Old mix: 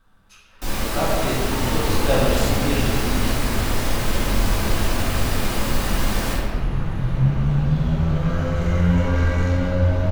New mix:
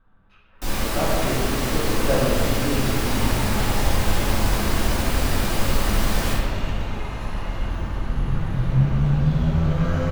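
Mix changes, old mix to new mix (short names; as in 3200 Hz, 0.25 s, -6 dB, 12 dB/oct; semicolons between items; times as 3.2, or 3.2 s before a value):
speech: add air absorption 480 m; second sound: entry +1.55 s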